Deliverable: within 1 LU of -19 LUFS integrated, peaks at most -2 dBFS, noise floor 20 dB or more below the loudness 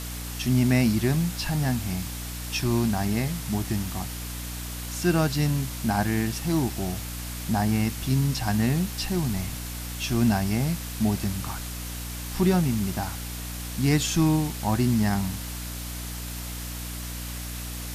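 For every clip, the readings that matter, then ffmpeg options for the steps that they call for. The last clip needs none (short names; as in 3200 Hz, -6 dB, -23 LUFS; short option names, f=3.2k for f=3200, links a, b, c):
hum 60 Hz; harmonics up to 300 Hz; hum level -33 dBFS; noise floor -35 dBFS; noise floor target -47 dBFS; loudness -26.5 LUFS; peak -9.5 dBFS; loudness target -19.0 LUFS
-> -af "bandreject=f=60:t=h:w=6,bandreject=f=120:t=h:w=6,bandreject=f=180:t=h:w=6,bandreject=f=240:t=h:w=6,bandreject=f=300:t=h:w=6"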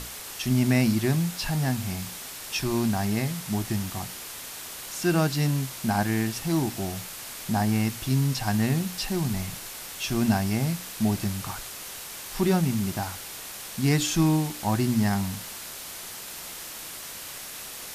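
hum none; noise floor -39 dBFS; noise floor target -48 dBFS
-> -af "afftdn=nr=9:nf=-39"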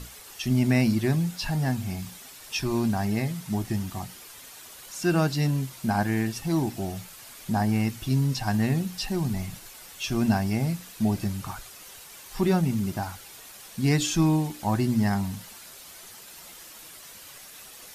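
noise floor -46 dBFS; noise floor target -47 dBFS
-> -af "afftdn=nr=6:nf=-46"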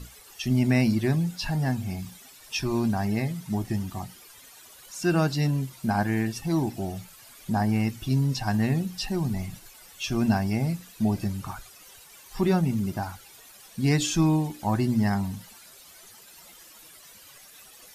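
noise floor -51 dBFS; loudness -26.5 LUFS; peak -10.0 dBFS; loudness target -19.0 LUFS
-> -af "volume=7.5dB"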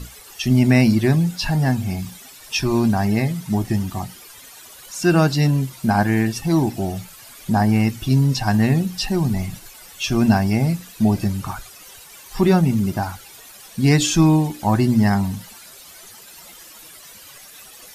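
loudness -19.0 LUFS; peak -2.5 dBFS; noise floor -43 dBFS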